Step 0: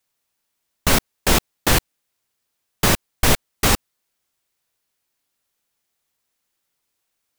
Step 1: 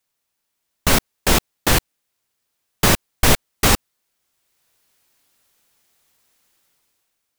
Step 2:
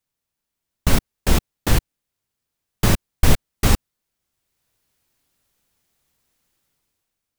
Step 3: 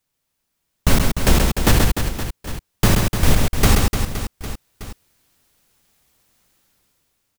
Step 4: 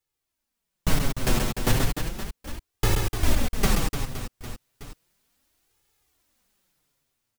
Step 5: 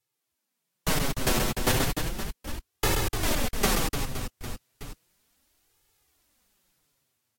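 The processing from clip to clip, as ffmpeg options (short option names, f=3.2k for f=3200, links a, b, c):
-af "dynaudnorm=f=110:g=13:m=12.5dB,volume=-1dB"
-af "lowshelf=f=250:g=11.5,volume=-7dB"
-af "alimiter=limit=-8.5dB:level=0:latency=1:release=301,aecho=1:1:130|299|518.7|804.3|1176:0.631|0.398|0.251|0.158|0.1,volume=6dB"
-af "flanger=delay=2.3:depth=5.9:regen=-3:speed=0.34:shape=sinusoidal,volume=-4.5dB"
-filter_complex "[0:a]acrossover=split=260|1500[a][b][c];[a]asoftclip=type=tanh:threshold=-26dB[d];[d][b][c]amix=inputs=3:normalize=0,volume=1.5dB" -ar 44100 -c:a libvorbis -b:a 64k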